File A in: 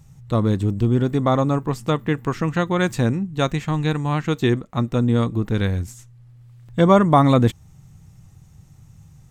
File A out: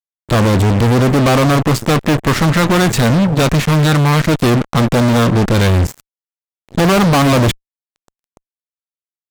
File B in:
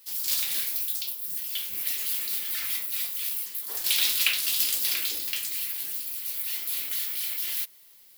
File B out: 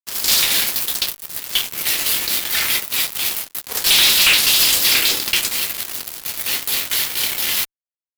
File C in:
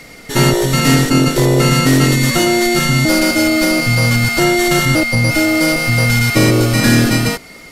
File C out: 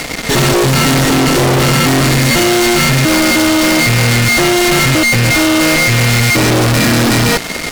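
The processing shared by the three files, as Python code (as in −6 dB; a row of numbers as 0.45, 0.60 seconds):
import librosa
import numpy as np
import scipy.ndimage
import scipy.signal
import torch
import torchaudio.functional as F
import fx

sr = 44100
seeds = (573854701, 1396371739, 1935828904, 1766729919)

y = fx.high_shelf(x, sr, hz=9100.0, db=-11.0)
y = fx.fuzz(y, sr, gain_db=36.0, gate_db=-37.0)
y = y * 10.0 ** (3.5 / 20.0)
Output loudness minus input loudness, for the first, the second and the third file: +7.5, +10.5, +2.5 LU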